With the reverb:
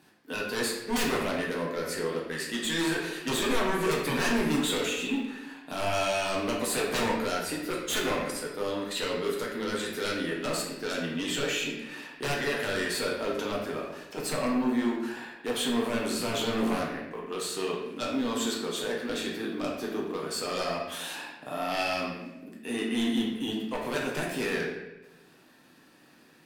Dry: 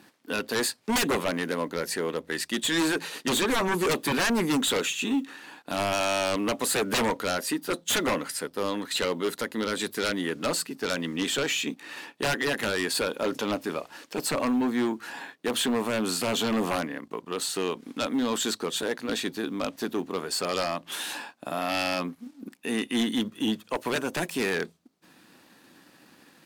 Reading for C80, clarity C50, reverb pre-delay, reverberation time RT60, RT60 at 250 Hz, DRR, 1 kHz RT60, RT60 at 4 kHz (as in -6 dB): 5.0 dB, 2.5 dB, 6 ms, 1.1 s, 1.1 s, -3.5 dB, 0.90 s, 0.80 s